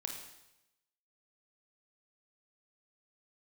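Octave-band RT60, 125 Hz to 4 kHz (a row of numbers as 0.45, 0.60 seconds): 1.0, 0.90, 0.90, 0.90, 0.90, 0.90 seconds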